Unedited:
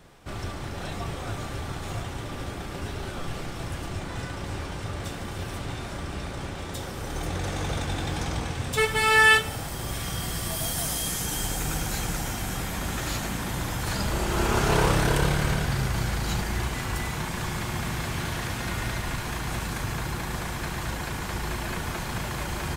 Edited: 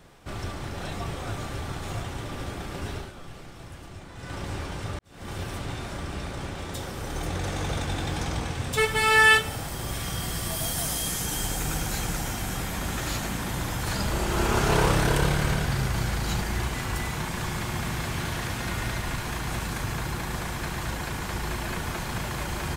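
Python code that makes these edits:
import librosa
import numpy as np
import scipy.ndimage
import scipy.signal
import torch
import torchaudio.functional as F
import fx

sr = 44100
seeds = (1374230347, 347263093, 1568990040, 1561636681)

y = fx.edit(x, sr, fx.fade_down_up(start_s=2.97, length_s=1.36, db=-9.5, fade_s=0.19, curve='qua'),
    fx.fade_in_span(start_s=4.99, length_s=0.32, curve='qua'), tone=tone)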